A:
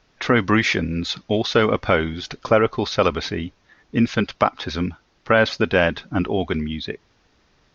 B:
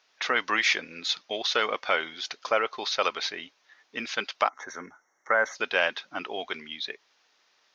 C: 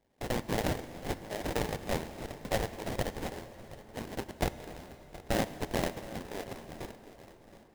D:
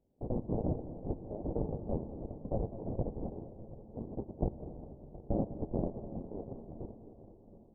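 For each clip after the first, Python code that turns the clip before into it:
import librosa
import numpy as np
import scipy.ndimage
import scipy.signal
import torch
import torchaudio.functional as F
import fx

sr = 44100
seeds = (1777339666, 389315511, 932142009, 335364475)

y1 = scipy.signal.sosfilt(scipy.signal.butter(2, 860.0, 'highpass', fs=sr, output='sos'), x)
y1 = fx.peak_eq(y1, sr, hz=1300.0, db=-4.0, octaves=2.0)
y1 = fx.spec_box(y1, sr, start_s=4.49, length_s=1.07, low_hz=2200.0, high_hz=5500.0, gain_db=-25)
y2 = fx.sample_hold(y1, sr, seeds[0], rate_hz=1300.0, jitter_pct=20)
y2 = fx.echo_feedback(y2, sr, ms=722, feedback_pct=47, wet_db=-17.5)
y2 = fx.rev_plate(y2, sr, seeds[1], rt60_s=4.9, hf_ratio=0.7, predelay_ms=0, drr_db=12.5)
y2 = y2 * 10.0 ** (-6.5 / 20.0)
y3 = scipy.ndimage.gaussian_filter1d(y2, 14.0, mode='constant')
y3 = fx.echo_feedback(y3, sr, ms=203, feedback_pct=55, wet_db=-14.5)
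y3 = y3 * 10.0 ** (1.0 / 20.0)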